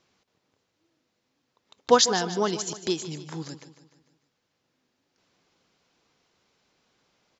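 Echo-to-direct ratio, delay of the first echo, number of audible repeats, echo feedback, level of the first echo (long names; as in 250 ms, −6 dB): −12.0 dB, 150 ms, 4, 51%, −13.5 dB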